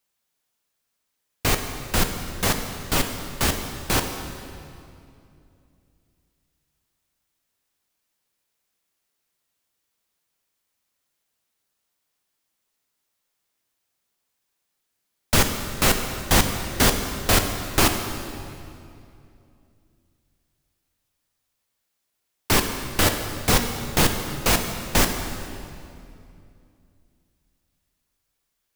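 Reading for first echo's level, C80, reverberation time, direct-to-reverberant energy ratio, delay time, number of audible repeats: no echo audible, 7.5 dB, 2.6 s, 5.0 dB, no echo audible, no echo audible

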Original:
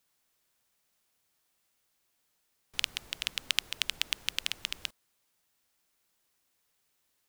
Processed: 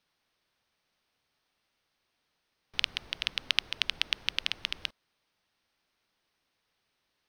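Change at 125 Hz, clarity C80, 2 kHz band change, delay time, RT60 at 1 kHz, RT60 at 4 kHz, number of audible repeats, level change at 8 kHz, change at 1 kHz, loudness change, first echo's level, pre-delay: +2.5 dB, no reverb audible, +2.5 dB, no echo audible, no reverb audible, no reverb audible, no echo audible, −7.5 dB, +2.5 dB, +1.5 dB, no echo audible, no reverb audible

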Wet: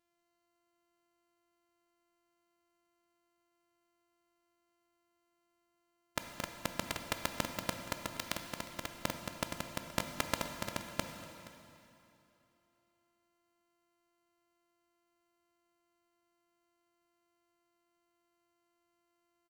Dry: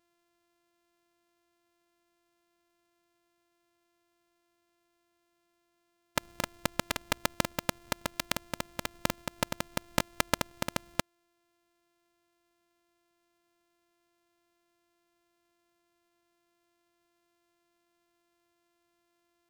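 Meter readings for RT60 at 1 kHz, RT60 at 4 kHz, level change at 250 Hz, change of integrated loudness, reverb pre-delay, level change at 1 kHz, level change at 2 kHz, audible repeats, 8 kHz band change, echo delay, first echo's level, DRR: 2.9 s, 2.6 s, −5.0 dB, −5.5 dB, 6 ms, −5.0 dB, −5.5 dB, 1, −5.5 dB, 473 ms, −19.5 dB, 6.0 dB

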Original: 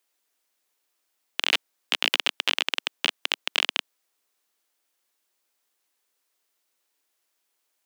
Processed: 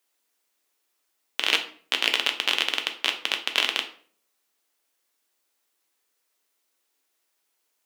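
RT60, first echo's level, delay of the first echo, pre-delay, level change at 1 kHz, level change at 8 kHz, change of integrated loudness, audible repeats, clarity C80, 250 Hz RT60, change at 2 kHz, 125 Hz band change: 0.50 s, no echo audible, no echo audible, 5 ms, +1.5 dB, +1.0 dB, +1.0 dB, no echo audible, 15.5 dB, 0.65 s, +1.0 dB, can't be measured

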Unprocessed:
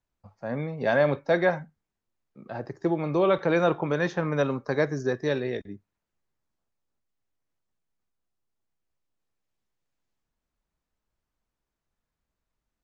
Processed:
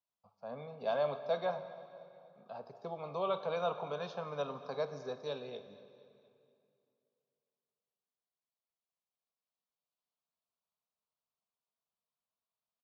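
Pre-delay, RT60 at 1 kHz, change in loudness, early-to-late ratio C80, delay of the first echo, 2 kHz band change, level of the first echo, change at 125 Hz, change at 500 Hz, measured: 21 ms, 2.4 s, −12.5 dB, 11.5 dB, 236 ms, −18.5 dB, −20.0 dB, −18.5 dB, −11.0 dB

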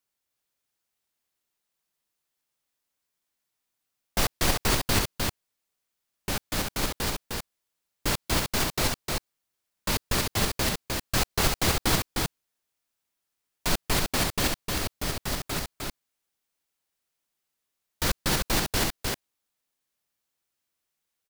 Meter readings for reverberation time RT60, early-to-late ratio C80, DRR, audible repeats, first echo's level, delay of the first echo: no reverb audible, no reverb audible, no reverb audible, 1, −3.5 dB, 306 ms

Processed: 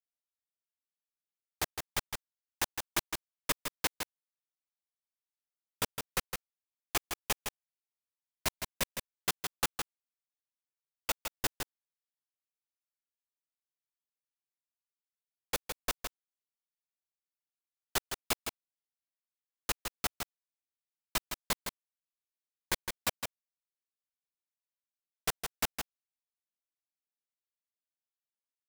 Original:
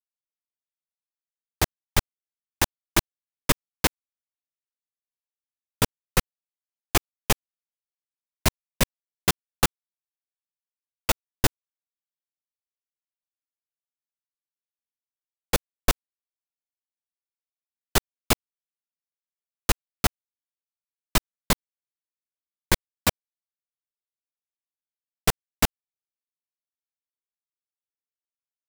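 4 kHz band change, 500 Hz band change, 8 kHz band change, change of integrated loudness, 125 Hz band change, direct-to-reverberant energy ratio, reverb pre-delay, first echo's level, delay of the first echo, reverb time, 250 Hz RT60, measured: −7.5 dB, −11.0 dB, −7.5 dB, −9.5 dB, −17.5 dB, no reverb audible, no reverb audible, −6.5 dB, 161 ms, no reverb audible, no reverb audible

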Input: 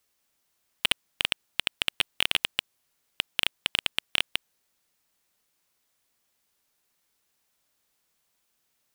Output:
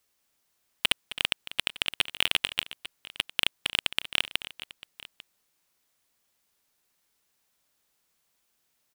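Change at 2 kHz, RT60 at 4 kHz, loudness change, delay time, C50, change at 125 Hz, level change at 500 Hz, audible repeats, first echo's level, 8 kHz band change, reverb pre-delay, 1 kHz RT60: 0.0 dB, no reverb audible, 0.0 dB, 265 ms, no reverb audible, 0.0 dB, 0.0 dB, 2, −14.0 dB, 0.0 dB, no reverb audible, no reverb audible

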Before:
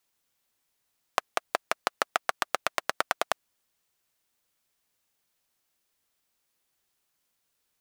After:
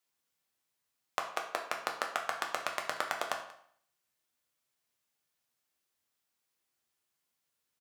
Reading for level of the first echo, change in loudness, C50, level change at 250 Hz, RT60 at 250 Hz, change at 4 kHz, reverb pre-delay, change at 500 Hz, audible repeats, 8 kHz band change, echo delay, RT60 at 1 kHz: −19.5 dB, −5.0 dB, 8.0 dB, −5.5 dB, 0.60 s, −5.5 dB, 6 ms, −5.5 dB, 1, −5.5 dB, 185 ms, 0.65 s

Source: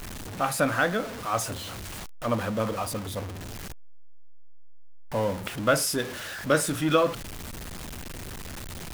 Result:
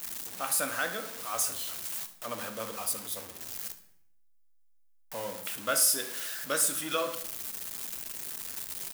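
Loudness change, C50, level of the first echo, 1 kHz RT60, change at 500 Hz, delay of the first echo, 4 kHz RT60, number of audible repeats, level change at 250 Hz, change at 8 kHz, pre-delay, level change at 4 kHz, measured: −3.0 dB, 11.5 dB, −16.5 dB, 0.70 s, −10.0 dB, 71 ms, 0.60 s, 1, −14.0 dB, +4.5 dB, 4 ms, −1.5 dB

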